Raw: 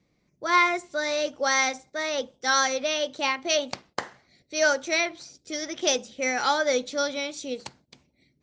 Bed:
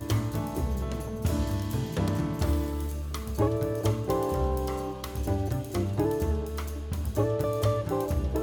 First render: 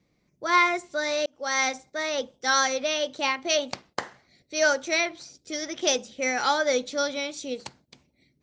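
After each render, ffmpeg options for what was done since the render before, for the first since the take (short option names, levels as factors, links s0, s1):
-filter_complex "[0:a]asplit=2[s0][s1];[s0]atrim=end=1.26,asetpts=PTS-STARTPTS,afade=t=out:st=1.256:d=0.004:c=hsin[s2];[s1]atrim=start=1.26,asetpts=PTS-STARTPTS,afade=t=in:d=0.4[s3];[s2][s3]concat=n=2:v=0:a=1"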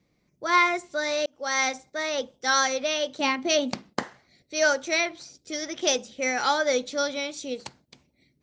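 -filter_complex "[0:a]asettb=1/sr,asplit=3[s0][s1][s2];[s0]atrim=end=3.204[s3];[s1]atrim=start=3.2:end=4.03,asetpts=PTS-STARTPTS,afade=t=in:d=0.004:c=qsin,afade=t=out:st=0.826:d=0.004:c=qsin,equalizer=f=220:t=o:w=1.1:g=12.5[s4];[s2]atrim=start=4.026[s5];[s3][s4]acrossfade=d=0.004:c1=hsin:c2=qsin[s6];[s6][s5]acrossfade=d=0.004:c1=qsin:c2=hsin"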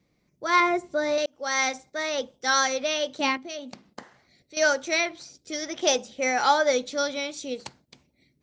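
-filter_complex "[0:a]asettb=1/sr,asplit=3[s0][s1][s2];[s0]atrim=end=0.604[s3];[s1]atrim=start=0.6:end=1.18,asetpts=PTS-STARTPTS,afade=t=in:d=0.004:c=qsin,afade=t=out:st=0.576:d=0.004:c=qsin,tiltshelf=f=1100:g=7[s4];[s2]atrim=start=1.176[s5];[s3][s4]acrossfade=d=0.004:c1=hsin:c2=qsin[s6];[s6][s5]acrossfade=d=0.004:c1=qsin:c2=hsin,asettb=1/sr,asplit=3[s7][s8][s9];[s7]atrim=end=3.374[s10];[s8]atrim=start=3.37:end=4.57,asetpts=PTS-STARTPTS,afade=t=in:d=0.004:c=qsin,afade=t=out:st=1.196:d=0.004:c=qsin,acompressor=threshold=0.00141:ratio=1.5:attack=3.2:release=140:knee=1:detection=peak[s11];[s9]atrim=start=4.566[s12];[s10][s11]acrossfade=d=0.004:c1=hsin:c2=qsin[s13];[s13][s12]acrossfade=d=0.004:c1=qsin:c2=hsin,asettb=1/sr,asplit=3[s14][s15][s16];[s14]atrim=end=5.704[s17];[s15]atrim=start=5.7:end=6.71,asetpts=PTS-STARTPTS,afade=t=in:d=0.004:c=qsin,afade=t=out:st=1.006:d=0.004:c=qsin,equalizer=f=790:w=1.5:g=5[s18];[s16]atrim=start=6.706[s19];[s17][s18]acrossfade=d=0.004:c1=hsin:c2=qsin[s20];[s20][s19]acrossfade=d=0.004:c1=qsin:c2=hsin"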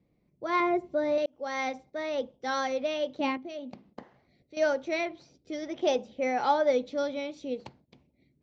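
-af "lowpass=2200,equalizer=f=1500:w=1.1:g=-10"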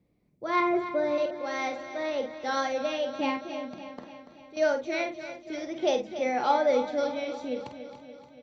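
-filter_complex "[0:a]asplit=2[s0][s1];[s1]adelay=48,volume=0.398[s2];[s0][s2]amix=inputs=2:normalize=0,aecho=1:1:287|574|861|1148|1435|1722|2009:0.266|0.157|0.0926|0.0546|0.0322|0.019|0.0112"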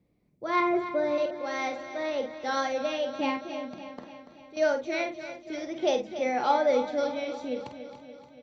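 -af anull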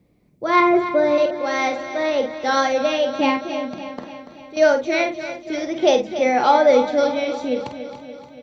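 -af "volume=3.16,alimiter=limit=0.708:level=0:latency=1"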